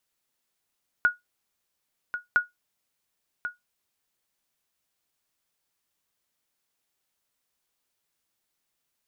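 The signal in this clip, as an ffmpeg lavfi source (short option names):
-f lavfi -i "aevalsrc='0.251*(sin(2*PI*1450*mod(t,1.31))*exp(-6.91*mod(t,1.31)/0.16)+0.282*sin(2*PI*1450*max(mod(t,1.31)-1.09,0))*exp(-6.91*max(mod(t,1.31)-1.09,0)/0.16))':d=2.62:s=44100"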